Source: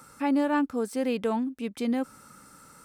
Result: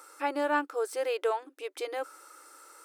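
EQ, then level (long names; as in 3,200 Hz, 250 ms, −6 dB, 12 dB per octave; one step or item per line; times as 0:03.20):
dynamic equaliser 1,400 Hz, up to +5 dB, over −52 dBFS, Q 4.2
linear-phase brick-wall high-pass 300 Hz
0.0 dB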